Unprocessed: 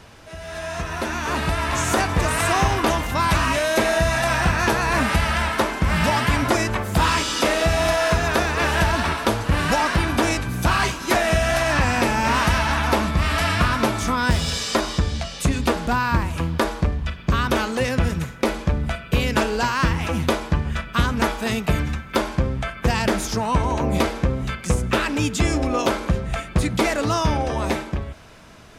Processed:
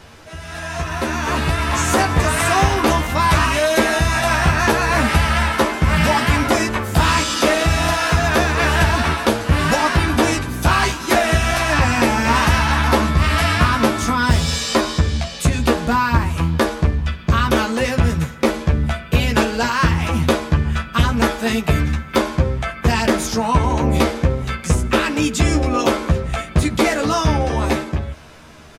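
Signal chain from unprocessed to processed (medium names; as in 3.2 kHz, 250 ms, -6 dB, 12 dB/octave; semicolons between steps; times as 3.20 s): doubling 13 ms -3.5 dB; trim +2 dB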